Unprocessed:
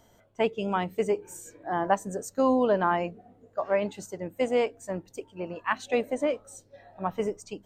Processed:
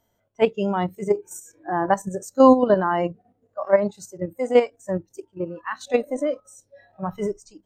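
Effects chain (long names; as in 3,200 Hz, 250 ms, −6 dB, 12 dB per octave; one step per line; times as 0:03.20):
output level in coarse steps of 11 dB
harmonic and percussive parts rebalanced harmonic +6 dB
noise reduction from a noise print of the clip's start 15 dB
level +6 dB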